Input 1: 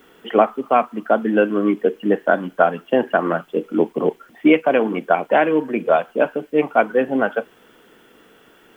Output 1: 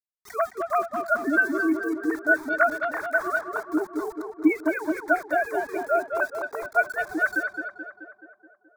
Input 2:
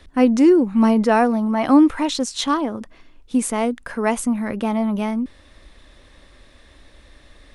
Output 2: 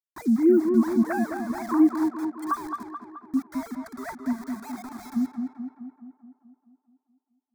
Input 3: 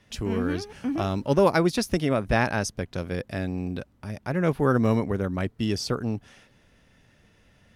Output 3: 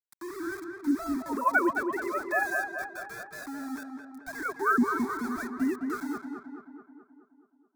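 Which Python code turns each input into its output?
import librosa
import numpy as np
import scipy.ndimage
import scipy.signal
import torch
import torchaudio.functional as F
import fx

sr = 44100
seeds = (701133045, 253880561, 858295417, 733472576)

p1 = fx.sine_speech(x, sr)
p2 = fx.dynamic_eq(p1, sr, hz=1500.0, q=5.4, threshold_db=-41.0, ratio=4.0, max_db=6)
p3 = fx.level_steps(p2, sr, step_db=23)
p4 = p2 + (p3 * 10.0 ** (-1.5 / 20.0))
p5 = np.where(np.abs(p4) >= 10.0 ** (-31.0 / 20.0), p4, 0.0)
p6 = fx.fixed_phaser(p5, sr, hz=1200.0, stages=4)
p7 = p6 + fx.echo_tape(p6, sr, ms=214, feedback_pct=67, wet_db=-4.0, lp_hz=1800.0, drive_db=9.0, wow_cents=17, dry=0)
y = p7 * 10.0 ** (-4.0 / 20.0)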